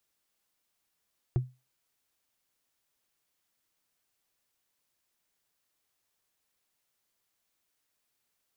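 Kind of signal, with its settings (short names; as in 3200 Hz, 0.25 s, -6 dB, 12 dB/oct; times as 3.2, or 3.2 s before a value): wood hit, lowest mode 127 Hz, decay 0.26 s, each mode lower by 9 dB, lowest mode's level -19.5 dB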